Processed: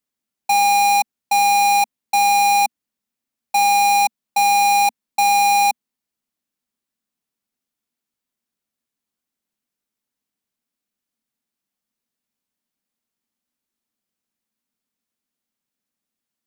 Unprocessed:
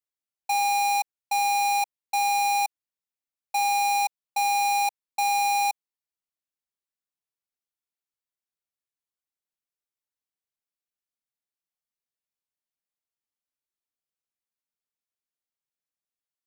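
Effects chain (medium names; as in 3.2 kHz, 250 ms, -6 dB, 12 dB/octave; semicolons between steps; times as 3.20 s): peaking EQ 230 Hz +14.5 dB 0.69 oct; trim +8 dB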